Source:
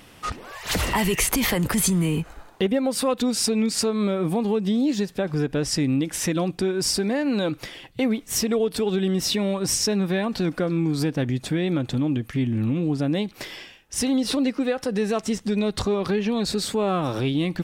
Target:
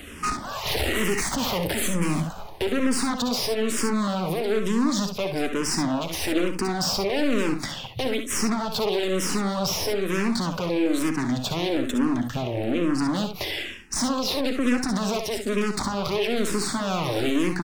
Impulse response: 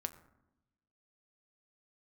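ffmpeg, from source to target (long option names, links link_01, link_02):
-filter_complex "[0:a]bandreject=frequency=500:width=14,aeval=exprs='0.355*(cos(1*acos(clip(val(0)/0.355,-1,1)))-cos(1*PI/2))+0.0891*(cos(5*acos(clip(val(0)/0.355,-1,1)))-cos(5*PI/2))+0.0891*(cos(8*acos(clip(val(0)/0.355,-1,1)))-cos(8*PI/2))':channel_layout=same,acrossover=split=240|920|1900|7100[link_01][link_02][link_03][link_04][link_05];[link_01]acompressor=threshold=-32dB:ratio=4[link_06];[link_02]acompressor=threshold=-23dB:ratio=4[link_07];[link_03]acompressor=threshold=-33dB:ratio=4[link_08];[link_04]acompressor=threshold=-28dB:ratio=4[link_09];[link_05]acompressor=threshold=-36dB:ratio=4[link_10];[link_06][link_07][link_08][link_09][link_10]amix=inputs=5:normalize=0,asoftclip=type=hard:threshold=-22dB,aecho=1:1:57|69:0.299|0.376,asplit=2[link_11][link_12];[1:a]atrim=start_sample=2205,lowshelf=frequency=350:gain=10.5[link_13];[link_12][link_13]afir=irnorm=-1:irlink=0,volume=-9.5dB[link_14];[link_11][link_14]amix=inputs=2:normalize=0,asplit=2[link_15][link_16];[link_16]afreqshift=-1.1[link_17];[link_15][link_17]amix=inputs=2:normalize=1"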